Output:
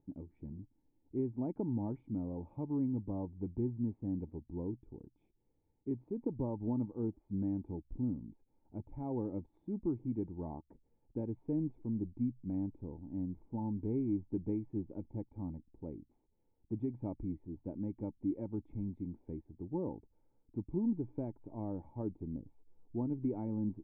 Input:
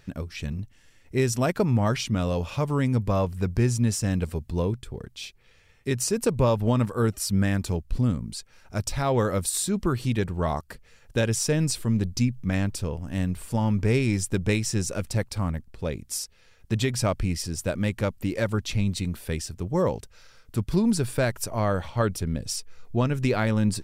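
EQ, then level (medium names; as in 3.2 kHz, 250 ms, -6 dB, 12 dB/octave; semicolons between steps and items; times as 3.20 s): cascade formant filter u; -3.0 dB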